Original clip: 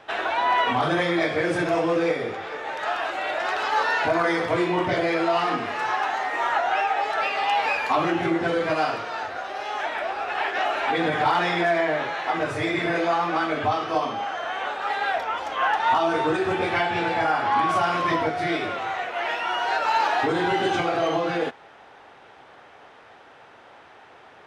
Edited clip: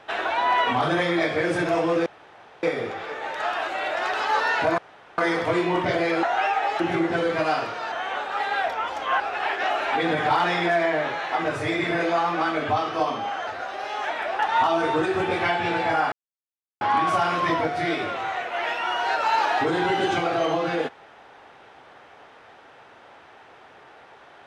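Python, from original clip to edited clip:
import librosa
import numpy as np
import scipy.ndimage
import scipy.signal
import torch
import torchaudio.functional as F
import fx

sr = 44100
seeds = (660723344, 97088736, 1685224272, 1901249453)

y = fx.edit(x, sr, fx.insert_room_tone(at_s=2.06, length_s=0.57),
    fx.insert_room_tone(at_s=4.21, length_s=0.4),
    fx.cut(start_s=5.26, length_s=1.31),
    fx.cut(start_s=7.14, length_s=0.97),
    fx.swap(start_s=9.23, length_s=0.92, other_s=14.42, other_length_s=1.28),
    fx.insert_silence(at_s=17.43, length_s=0.69), tone=tone)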